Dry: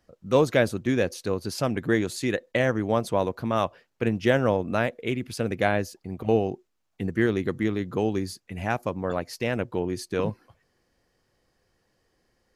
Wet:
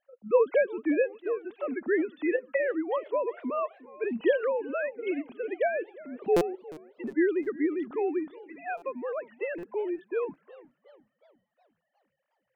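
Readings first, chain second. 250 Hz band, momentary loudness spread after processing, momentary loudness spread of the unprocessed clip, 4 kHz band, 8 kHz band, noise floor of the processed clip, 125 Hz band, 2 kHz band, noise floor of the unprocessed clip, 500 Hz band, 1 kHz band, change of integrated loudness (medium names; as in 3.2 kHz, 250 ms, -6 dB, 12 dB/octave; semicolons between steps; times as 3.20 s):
-4.5 dB, 10 LU, 8 LU, under -15 dB, under -15 dB, -81 dBFS, -23.0 dB, -5.0 dB, -74 dBFS, -1.5 dB, -6.0 dB, -3.5 dB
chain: formants replaced by sine waves; buffer glitch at 6.36/8.77/9.58/11.46 s, samples 256, times 8; modulated delay 361 ms, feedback 50%, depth 206 cents, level -20 dB; trim -3.5 dB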